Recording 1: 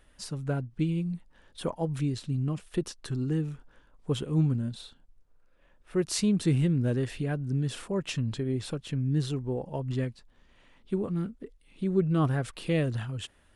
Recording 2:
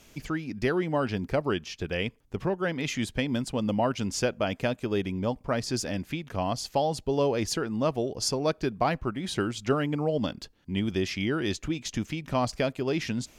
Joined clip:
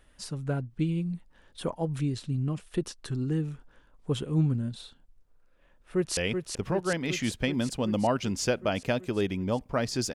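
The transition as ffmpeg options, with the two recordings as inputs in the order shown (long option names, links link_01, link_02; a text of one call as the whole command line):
ffmpeg -i cue0.wav -i cue1.wav -filter_complex "[0:a]apad=whole_dur=10.14,atrim=end=10.14,atrim=end=6.172[link_01];[1:a]atrim=start=1.918:end=5.89[link_02];[link_01][link_02]acrossfade=duration=0.004:curve1=hsin:curve2=hsin,asplit=2[link_03][link_04];[link_04]afade=type=in:start_time=5.43:duration=0.01,afade=type=out:start_time=6.17:duration=0.01,aecho=0:1:380|760|1140|1520|1900|2280|2660|3040|3420|3800|4180|4560:0.530884|0.398163|0.298622|0.223967|0.167975|0.125981|0.094486|0.0708645|0.0531484|0.0398613|0.029896|0.022422[link_05];[link_03][link_05]amix=inputs=2:normalize=0" out.wav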